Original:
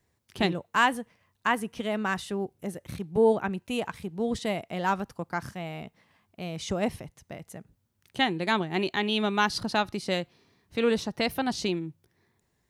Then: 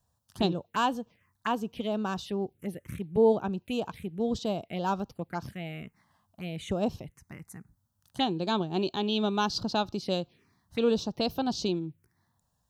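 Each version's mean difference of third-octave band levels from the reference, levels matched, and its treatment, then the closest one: 3.0 dB: touch-sensitive phaser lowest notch 360 Hz, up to 2 kHz, full sweep at -27.5 dBFS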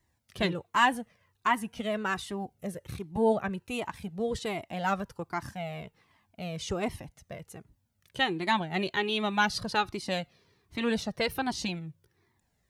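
2.0 dB: Shepard-style flanger falling 1.3 Hz; trim +3 dB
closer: second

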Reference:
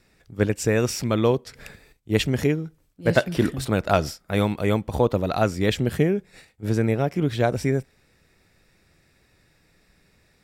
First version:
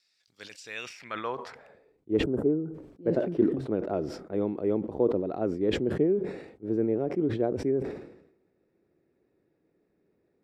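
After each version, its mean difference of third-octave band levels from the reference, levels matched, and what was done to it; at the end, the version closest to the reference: 10.0 dB: de-esser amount 70%; time-frequency box 2.24–2.73 s, 1.6–7.1 kHz -18 dB; band-pass sweep 4.7 kHz -> 360 Hz, 0.55–2.03 s; decay stretcher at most 72 dB/s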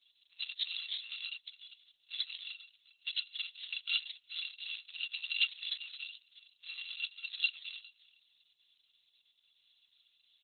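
23.0 dB: bit-reversed sample order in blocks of 256 samples; Butterworth band-pass 3.9 kHz, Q 2.5; on a send: delay 404 ms -21 dB; on the sum: trim +7.5 dB; Opus 6 kbps 48 kHz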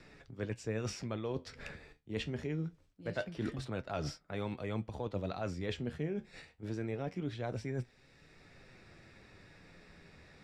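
4.5 dB: low-pass 5.6 kHz 12 dB/octave; reverse; compression 10:1, threshold -28 dBFS, peak gain reduction 16 dB; reverse; flange 0.24 Hz, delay 6.5 ms, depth 7.3 ms, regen +62%; three bands compressed up and down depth 40%; trim -1.5 dB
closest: third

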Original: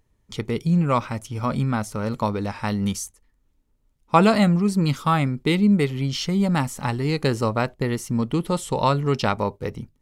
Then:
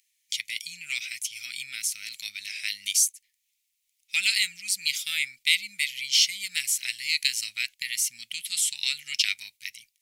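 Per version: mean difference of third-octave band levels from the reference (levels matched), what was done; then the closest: 21.0 dB: treble shelf 6.4 kHz +5.5 dB; in parallel at -6 dB: saturation -13 dBFS, distortion -16 dB; on the sum: elliptic high-pass 2.2 kHz, stop band 50 dB; trim +4.5 dB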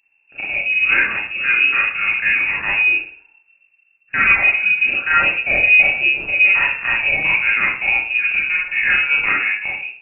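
15.0 dB: level rider gain up to 7 dB; saturation -8.5 dBFS, distortion -17 dB; Schroeder reverb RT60 0.49 s, combs from 29 ms, DRR -5.5 dB; frequency inversion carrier 2.7 kHz; trim -5 dB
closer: second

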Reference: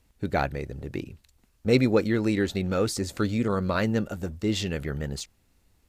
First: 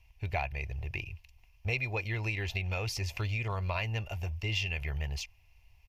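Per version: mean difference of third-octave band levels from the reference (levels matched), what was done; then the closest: 6.0 dB: FFT filter 110 Hz 0 dB, 260 Hz -24 dB, 920 Hz +3 dB, 1.4 kHz -13 dB, 2.6 kHz +12 dB, 3.8 kHz -7 dB, 5.6 kHz 0 dB, 8.1 kHz -16 dB, 12 kHz -5 dB; compression 3:1, threshold -31 dBFS, peak gain reduction 10 dB; bass shelf 140 Hz +3.5 dB; comb 2.9 ms, depth 33%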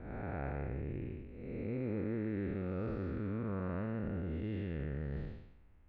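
10.0 dB: spectral blur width 370 ms; low-pass 2.3 kHz 24 dB/octave; bass shelf 66 Hz +7.5 dB; reverse; compression 4:1, threshold -36 dBFS, peak gain reduction 13.5 dB; reverse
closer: first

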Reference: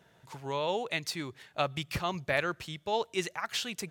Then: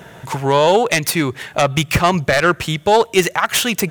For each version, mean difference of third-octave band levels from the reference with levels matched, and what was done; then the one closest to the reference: 3.5 dB: self-modulated delay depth 0.17 ms; peaking EQ 4.4 kHz -6 dB 0.79 oct; in parallel at +0.5 dB: compression, threshold -45 dBFS, peak gain reduction 18 dB; on the sum: loudness maximiser +19 dB; trim -1 dB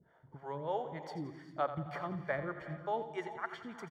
9.5 dB: Savitzky-Golay filter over 41 samples; harmonic tremolo 3.3 Hz, depth 100%, crossover 400 Hz; on a send: feedback delay 86 ms, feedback 44%, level -11.5 dB; on the sum: gated-style reverb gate 430 ms rising, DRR 10.5 dB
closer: first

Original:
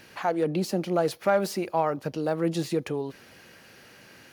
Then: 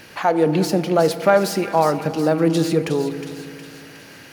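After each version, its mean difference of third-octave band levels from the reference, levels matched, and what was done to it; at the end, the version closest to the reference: 4.0 dB: feedback echo behind a high-pass 363 ms, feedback 54%, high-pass 2 kHz, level -8 dB; FDN reverb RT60 2.4 s, low-frequency decay 1.2×, high-frequency decay 0.35×, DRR 11.5 dB; trim +8 dB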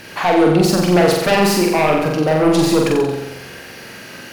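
7.0 dB: sine folder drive 9 dB, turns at -11.5 dBFS; on a send: flutter echo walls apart 7.7 m, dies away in 0.99 s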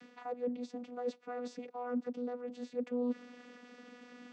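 10.5 dB: reverse; compression 6:1, threshold -36 dBFS, peak gain reduction 17 dB; reverse; vocoder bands 16, saw 245 Hz; trim +1.5 dB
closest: first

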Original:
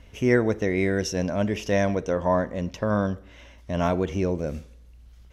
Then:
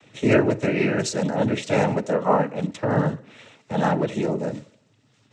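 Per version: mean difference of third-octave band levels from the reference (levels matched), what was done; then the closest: 5.0 dB: noise-vocoded speech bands 12; trim +3 dB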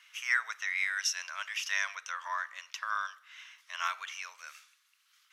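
19.5 dB: elliptic high-pass 1.2 kHz, stop band 80 dB; trim +2 dB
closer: first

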